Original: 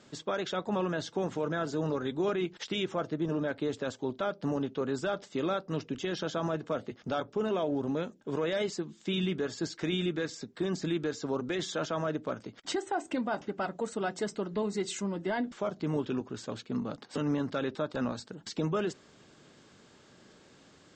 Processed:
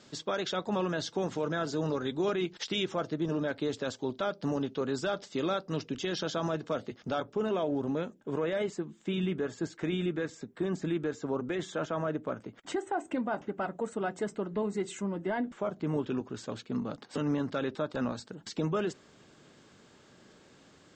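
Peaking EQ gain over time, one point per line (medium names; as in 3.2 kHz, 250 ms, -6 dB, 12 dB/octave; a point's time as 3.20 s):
peaking EQ 4.8 kHz 1.1 oct
6.78 s +5 dB
7.29 s -2 dB
7.83 s -2 dB
8.57 s -11.5 dB
15.65 s -11.5 dB
16.27 s -1.5 dB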